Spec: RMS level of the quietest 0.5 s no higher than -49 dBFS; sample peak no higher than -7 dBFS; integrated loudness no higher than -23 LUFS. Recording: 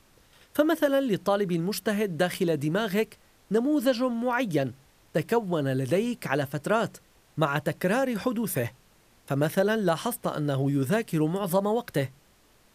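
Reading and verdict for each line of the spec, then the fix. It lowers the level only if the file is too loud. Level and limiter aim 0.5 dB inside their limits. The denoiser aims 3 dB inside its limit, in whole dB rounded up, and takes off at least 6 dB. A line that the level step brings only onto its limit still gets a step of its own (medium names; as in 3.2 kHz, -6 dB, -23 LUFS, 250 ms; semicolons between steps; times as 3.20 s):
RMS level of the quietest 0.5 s -61 dBFS: pass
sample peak -9.0 dBFS: pass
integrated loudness -27.0 LUFS: pass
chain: none needed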